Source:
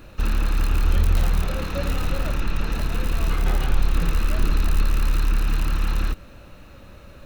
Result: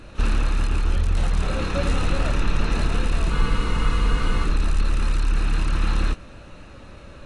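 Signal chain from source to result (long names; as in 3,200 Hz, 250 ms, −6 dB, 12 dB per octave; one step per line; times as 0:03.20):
speech leveller 0.5 s
frozen spectrum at 0:03.33, 1.11 s
AAC 32 kbit/s 22,050 Hz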